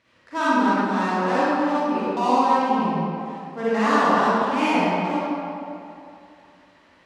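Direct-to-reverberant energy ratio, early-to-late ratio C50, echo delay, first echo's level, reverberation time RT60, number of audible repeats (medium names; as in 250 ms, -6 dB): -11.0 dB, -8.0 dB, no echo, no echo, 2.6 s, no echo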